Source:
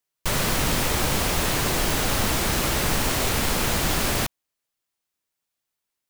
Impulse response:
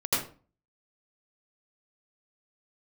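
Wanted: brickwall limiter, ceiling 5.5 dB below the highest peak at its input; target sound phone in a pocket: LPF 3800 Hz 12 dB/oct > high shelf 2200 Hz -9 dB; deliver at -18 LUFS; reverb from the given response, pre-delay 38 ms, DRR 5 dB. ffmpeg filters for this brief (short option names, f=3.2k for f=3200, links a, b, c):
-filter_complex "[0:a]alimiter=limit=-15dB:level=0:latency=1,asplit=2[a][b];[1:a]atrim=start_sample=2205,adelay=38[c];[b][c]afir=irnorm=-1:irlink=0,volume=-15.5dB[d];[a][d]amix=inputs=2:normalize=0,lowpass=3.8k,highshelf=f=2.2k:g=-9,volume=10dB"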